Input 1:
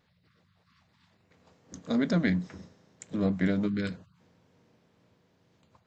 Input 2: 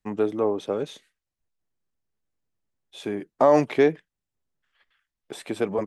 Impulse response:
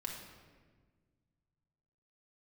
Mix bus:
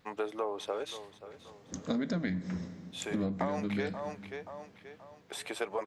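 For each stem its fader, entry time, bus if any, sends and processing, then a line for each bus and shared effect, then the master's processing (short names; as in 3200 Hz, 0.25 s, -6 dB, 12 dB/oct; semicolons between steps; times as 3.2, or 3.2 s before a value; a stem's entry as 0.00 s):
+3.0 dB, 0.00 s, send -13 dB, no echo send, dry
0.0 dB, 0.00 s, no send, echo send -16.5 dB, HPF 660 Hz 12 dB/oct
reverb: on, RT60 1.5 s, pre-delay 4 ms
echo: feedback echo 0.53 s, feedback 38%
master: compressor 12:1, threshold -29 dBFS, peak gain reduction 15.5 dB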